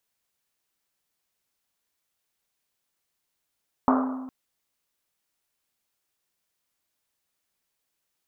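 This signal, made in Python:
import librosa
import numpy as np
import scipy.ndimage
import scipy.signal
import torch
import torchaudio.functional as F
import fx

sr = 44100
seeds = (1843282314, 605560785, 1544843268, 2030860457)

y = fx.risset_drum(sr, seeds[0], length_s=0.41, hz=260.0, decay_s=1.4, noise_hz=910.0, noise_width_hz=740.0, noise_pct=40)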